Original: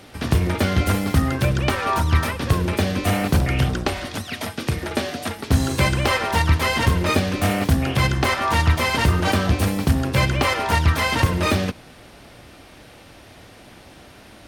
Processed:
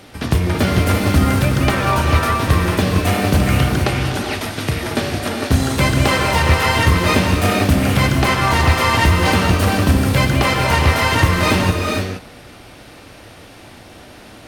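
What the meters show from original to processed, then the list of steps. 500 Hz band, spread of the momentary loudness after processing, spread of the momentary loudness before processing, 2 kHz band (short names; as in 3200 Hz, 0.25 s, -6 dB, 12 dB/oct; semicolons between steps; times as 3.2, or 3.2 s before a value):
+5.0 dB, 7 LU, 7 LU, +5.0 dB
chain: non-linear reverb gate 0.5 s rising, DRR 0.5 dB; gain +2.5 dB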